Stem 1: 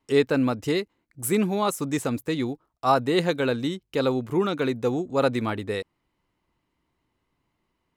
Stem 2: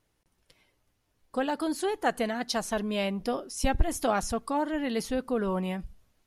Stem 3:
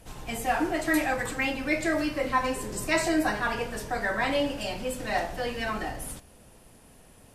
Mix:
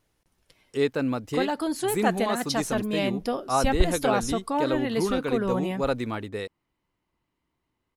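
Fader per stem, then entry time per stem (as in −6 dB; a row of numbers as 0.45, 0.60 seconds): −4.0 dB, +2.0 dB, muted; 0.65 s, 0.00 s, muted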